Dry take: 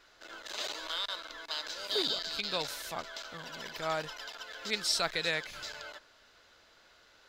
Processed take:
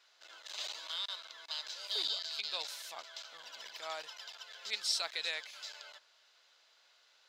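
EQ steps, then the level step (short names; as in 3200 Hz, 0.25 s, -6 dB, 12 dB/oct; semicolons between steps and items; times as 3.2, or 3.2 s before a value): HPF 1000 Hz 12 dB/oct; bell 1500 Hz -8.5 dB 1.3 oct; high shelf 9400 Hz -10 dB; 0.0 dB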